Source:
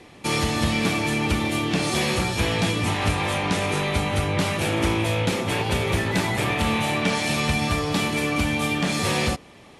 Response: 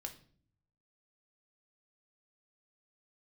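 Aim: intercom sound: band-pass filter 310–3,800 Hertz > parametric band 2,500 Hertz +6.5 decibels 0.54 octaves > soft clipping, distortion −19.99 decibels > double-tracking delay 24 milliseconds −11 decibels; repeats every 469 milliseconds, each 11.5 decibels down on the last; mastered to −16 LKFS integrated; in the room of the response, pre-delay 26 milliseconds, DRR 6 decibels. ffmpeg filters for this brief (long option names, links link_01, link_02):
-filter_complex "[0:a]aecho=1:1:469|938|1407:0.266|0.0718|0.0194,asplit=2[link_01][link_02];[1:a]atrim=start_sample=2205,adelay=26[link_03];[link_02][link_03]afir=irnorm=-1:irlink=0,volume=-3dB[link_04];[link_01][link_04]amix=inputs=2:normalize=0,highpass=310,lowpass=3800,equalizer=frequency=2500:width_type=o:width=0.54:gain=6.5,asoftclip=threshold=-15.5dB,asplit=2[link_05][link_06];[link_06]adelay=24,volume=-11dB[link_07];[link_05][link_07]amix=inputs=2:normalize=0,volume=6.5dB"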